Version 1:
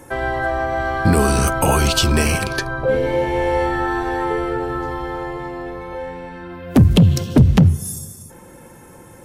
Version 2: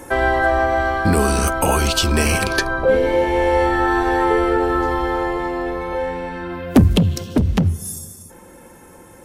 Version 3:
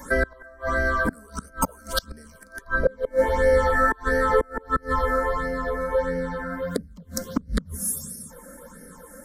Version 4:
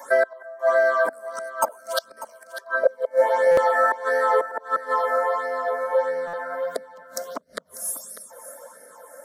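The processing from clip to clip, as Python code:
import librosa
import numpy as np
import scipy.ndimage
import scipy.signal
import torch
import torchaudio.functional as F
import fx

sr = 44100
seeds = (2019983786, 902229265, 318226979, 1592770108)

y1 = fx.rider(x, sr, range_db=5, speed_s=0.5)
y1 = fx.peak_eq(y1, sr, hz=130.0, db=-12.0, octaves=0.41)
y1 = F.gain(torch.from_numpy(y1), 1.0).numpy()
y2 = fx.phaser_stages(y1, sr, stages=8, low_hz=120.0, high_hz=1100.0, hz=1.5, feedback_pct=5)
y2 = fx.gate_flip(y2, sr, shuts_db=-10.0, range_db=-29)
y2 = fx.fixed_phaser(y2, sr, hz=520.0, stages=8)
y2 = F.gain(torch.from_numpy(y2), 4.5).numpy()
y3 = fx.highpass_res(y2, sr, hz=660.0, q=4.9)
y3 = y3 + 10.0 ** (-14.5 / 20.0) * np.pad(y3, (int(595 * sr / 1000.0), 0))[:len(y3)]
y3 = fx.buffer_glitch(y3, sr, at_s=(3.51, 6.27), block=256, repeats=10)
y3 = F.gain(torch.from_numpy(y3), -2.0).numpy()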